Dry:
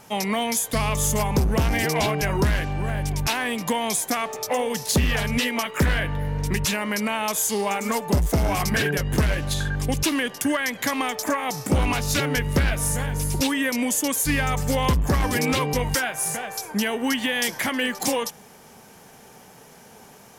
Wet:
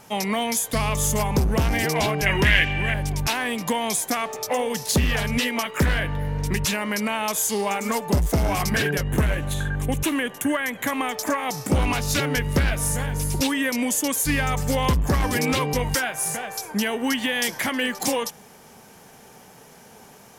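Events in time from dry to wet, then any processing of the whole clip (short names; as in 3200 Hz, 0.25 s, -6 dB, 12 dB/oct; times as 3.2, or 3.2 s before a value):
2.26–2.94 band shelf 2400 Hz +14.5 dB 1.2 oct
9.03–11.11 bell 4900 Hz -14 dB 0.58 oct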